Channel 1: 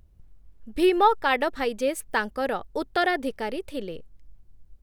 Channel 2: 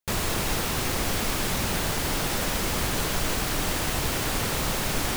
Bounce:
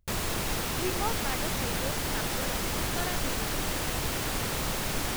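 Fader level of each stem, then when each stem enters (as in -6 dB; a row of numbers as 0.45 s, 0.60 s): -14.5 dB, -4.0 dB; 0.00 s, 0.00 s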